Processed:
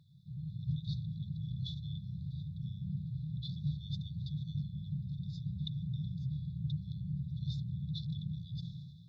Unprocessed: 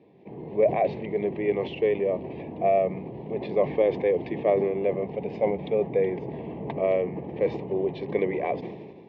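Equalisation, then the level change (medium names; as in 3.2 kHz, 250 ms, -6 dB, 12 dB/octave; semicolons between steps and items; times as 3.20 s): brick-wall FIR band-stop 170–3400 Hz; tone controls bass -3 dB, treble -5 dB; +8.0 dB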